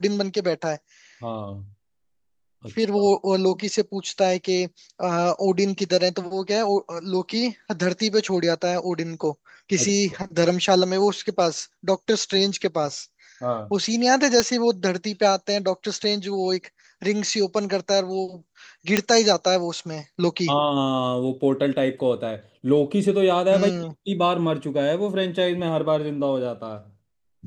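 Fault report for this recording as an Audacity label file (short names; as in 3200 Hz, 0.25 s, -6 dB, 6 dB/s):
14.400000	14.400000	pop -5 dBFS
18.970000	18.970000	pop -3 dBFS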